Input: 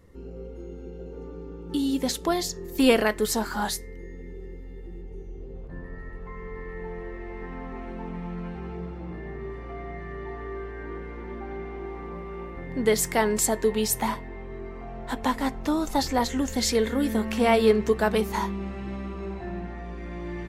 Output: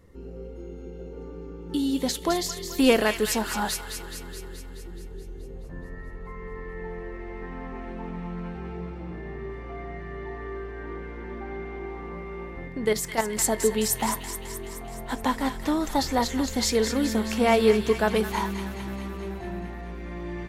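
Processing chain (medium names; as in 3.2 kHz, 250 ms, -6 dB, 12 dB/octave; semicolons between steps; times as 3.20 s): 12.68–13.38 s: level held to a coarse grid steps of 10 dB; feedback echo behind a high-pass 213 ms, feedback 66%, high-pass 1.5 kHz, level -7 dB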